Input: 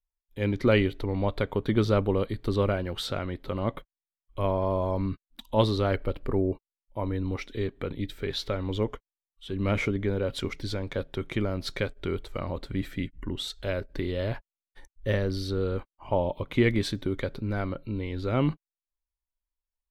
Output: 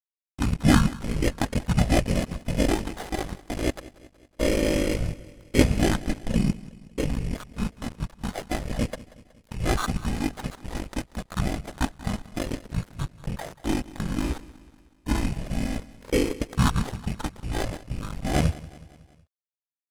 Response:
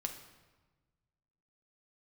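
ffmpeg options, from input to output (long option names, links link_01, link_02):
-filter_complex "[0:a]equalizer=frequency=1100:width=1:gain=8,acrusher=samples=9:mix=1:aa=0.000001,asplit=3[link_01][link_02][link_03];[link_02]asetrate=29433,aresample=44100,atempo=1.49831,volume=-12dB[link_04];[link_03]asetrate=37084,aresample=44100,atempo=1.18921,volume=-1dB[link_05];[link_01][link_04][link_05]amix=inputs=3:normalize=0,aphaser=in_gain=1:out_gain=1:delay=1.5:decay=0.25:speed=0.15:type=triangular,asetrate=24750,aresample=44100,atempo=1.7818,aeval=exprs='sgn(val(0))*max(abs(val(0))-0.0237,0)':channel_layout=same,aecho=1:1:185|370|555|740:0.112|0.0595|0.0315|0.0167"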